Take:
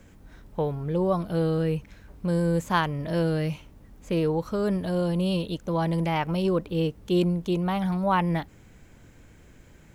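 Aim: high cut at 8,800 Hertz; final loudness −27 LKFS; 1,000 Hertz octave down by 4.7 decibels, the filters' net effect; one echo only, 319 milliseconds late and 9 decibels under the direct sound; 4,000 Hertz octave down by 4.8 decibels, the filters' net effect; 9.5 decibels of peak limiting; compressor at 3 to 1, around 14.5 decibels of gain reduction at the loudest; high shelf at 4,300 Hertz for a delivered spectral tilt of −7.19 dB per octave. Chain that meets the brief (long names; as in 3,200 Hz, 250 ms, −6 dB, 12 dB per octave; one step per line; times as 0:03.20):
low-pass filter 8,800 Hz
parametric band 1,000 Hz −5.5 dB
parametric band 4,000 Hz −8 dB
high-shelf EQ 4,300 Hz +3 dB
downward compressor 3 to 1, threshold −41 dBFS
brickwall limiter −37 dBFS
single-tap delay 319 ms −9 dB
level +18.5 dB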